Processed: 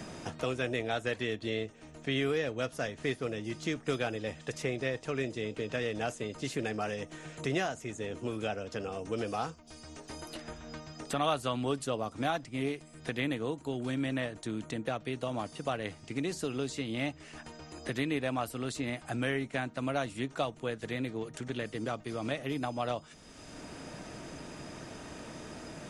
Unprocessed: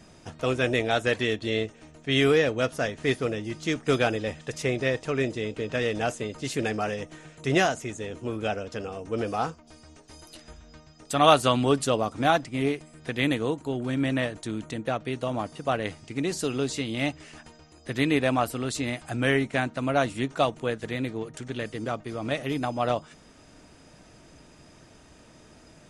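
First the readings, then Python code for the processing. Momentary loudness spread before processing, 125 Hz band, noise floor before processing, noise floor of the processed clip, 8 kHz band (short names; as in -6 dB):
11 LU, -7.0 dB, -53 dBFS, -53 dBFS, -7.0 dB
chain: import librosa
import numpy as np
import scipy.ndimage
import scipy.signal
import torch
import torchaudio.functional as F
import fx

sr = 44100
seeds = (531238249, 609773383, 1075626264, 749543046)

y = fx.band_squash(x, sr, depth_pct=70)
y = F.gain(torch.from_numpy(y), -7.5).numpy()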